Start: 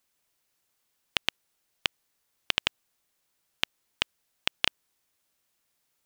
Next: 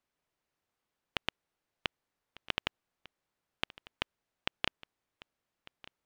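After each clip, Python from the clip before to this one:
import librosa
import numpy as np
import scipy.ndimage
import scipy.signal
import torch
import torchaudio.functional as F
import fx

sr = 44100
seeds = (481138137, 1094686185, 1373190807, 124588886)

y = fx.lowpass(x, sr, hz=1400.0, slope=6)
y = y + 10.0 ** (-20.0 / 20.0) * np.pad(y, (int(1199 * sr / 1000.0), 0))[:len(y)]
y = y * 10.0 ** (-1.5 / 20.0)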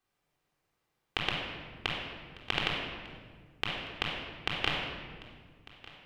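y = fx.room_shoebox(x, sr, seeds[0], volume_m3=2000.0, walls='mixed', distance_m=3.7)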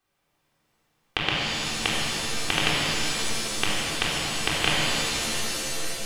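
y = fx.rev_shimmer(x, sr, seeds[1], rt60_s=3.6, semitones=7, shimmer_db=-2, drr_db=0.5)
y = y * 10.0 ** (5.5 / 20.0)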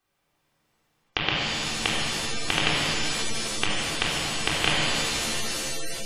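y = fx.spec_gate(x, sr, threshold_db=-30, keep='strong')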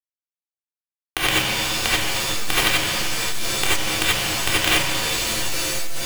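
y = fx.quant_companded(x, sr, bits=2)
y = fx.rev_gated(y, sr, seeds[2], gate_ms=110, shape='rising', drr_db=-7.0)
y = y * 10.0 ** (-5.0 / 20.0)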